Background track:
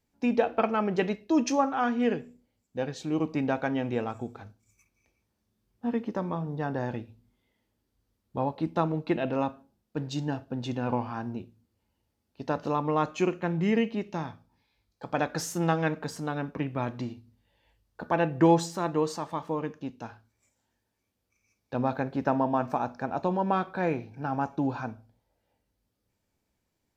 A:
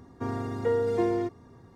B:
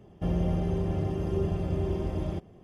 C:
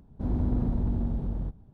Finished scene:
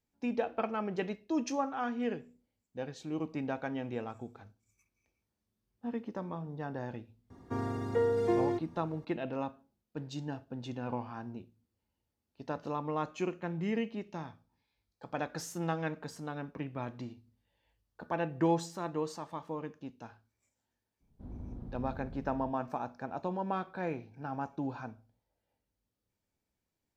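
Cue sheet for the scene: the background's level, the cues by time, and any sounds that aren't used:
background track -8 dB
7.30 s: add A -3 dB
21.00 s: add C -17 dB, fades 0.02 s + doubling 31 ms -13 dB
not used: B

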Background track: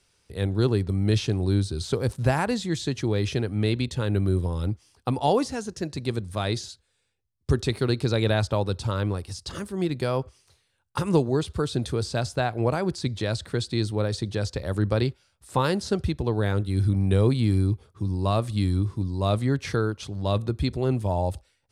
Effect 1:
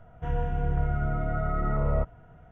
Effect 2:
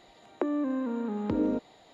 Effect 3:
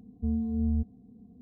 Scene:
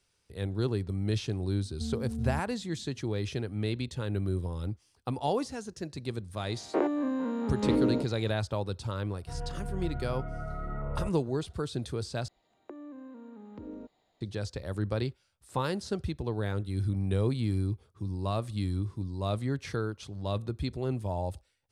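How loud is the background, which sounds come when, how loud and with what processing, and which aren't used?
background track -7.5 dB
1.57 s: add 3 -7 dB
6.39 s: add 2 -2.5 dB + every event in the spectrogram widened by 120 ms
9.05 s: add 1 -9 dB
12.28 s: replace with 2 -16.5 dB + bass shelf 78 Hz +10 dB

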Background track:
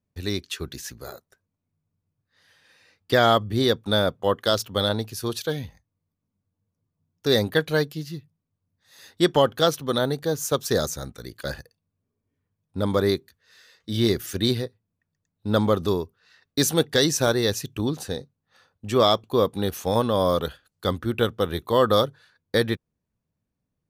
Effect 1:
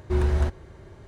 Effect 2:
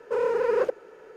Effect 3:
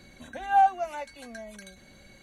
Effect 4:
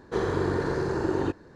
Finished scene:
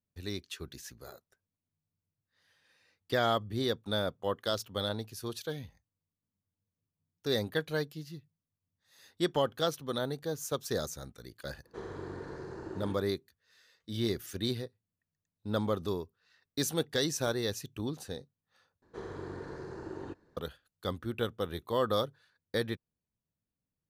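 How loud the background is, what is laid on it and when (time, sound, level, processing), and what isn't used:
background track -10.5 dB
11.62 s: add 4 -15.5 dB, fades 0.05 s
18.82 s: replace with 4 -15.5 dB
not used: 1, 2, 3

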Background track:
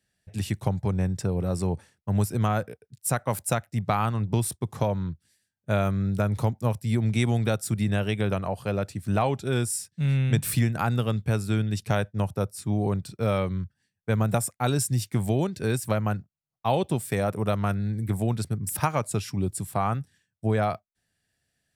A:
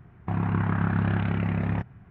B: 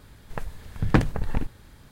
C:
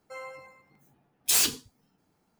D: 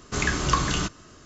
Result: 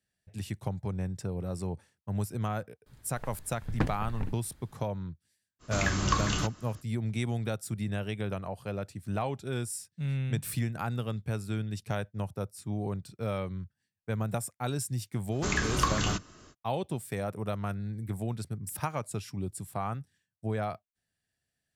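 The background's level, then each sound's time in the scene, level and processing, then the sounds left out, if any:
background track -8 dB
2.86 s: add B -10 dB
5.59 s: add D -5 dB, fades 0.05 s + band-stop 410 Hz, Q 8.5
15.30 s: add D -4.5 dB, fades 0.05 s
not used: A, C

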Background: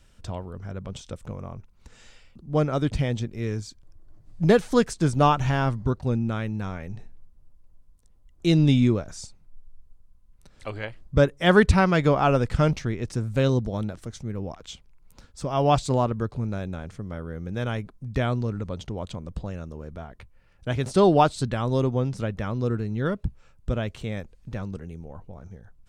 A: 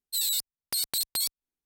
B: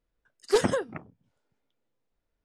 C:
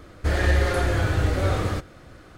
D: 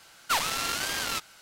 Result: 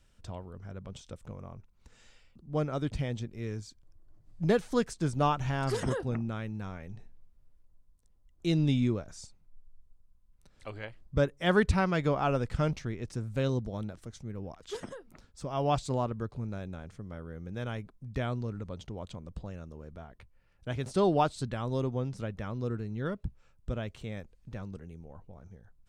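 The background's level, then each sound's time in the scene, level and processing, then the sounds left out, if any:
background -8 dB
5.19 s: add B -3 dB + peak limiter -22.5 dBFS
14.19 s: add B -17 dB + band-stop 770 Hz
not used: A, C, D

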